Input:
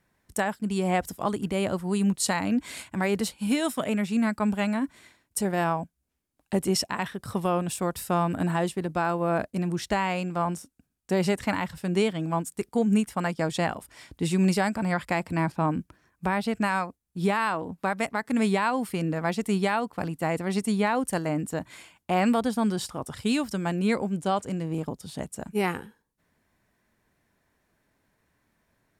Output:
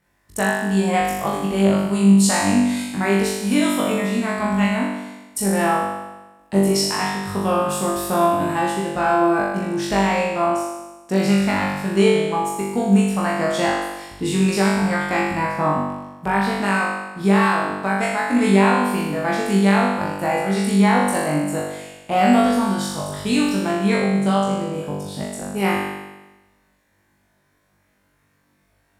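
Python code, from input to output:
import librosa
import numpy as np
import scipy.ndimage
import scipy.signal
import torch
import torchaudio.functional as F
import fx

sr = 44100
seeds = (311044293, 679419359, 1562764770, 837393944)

y = fx.cheby_harmonics(x, sr, harmonics=(3,), levels_db=(-29,), full_scale_db=-14.0)
y = fx.room_flutter(y, sr, wall_m=3.5, rt60_s=1.1)
y = F.gain(torch.from_numpy(y), 2.0).numpy()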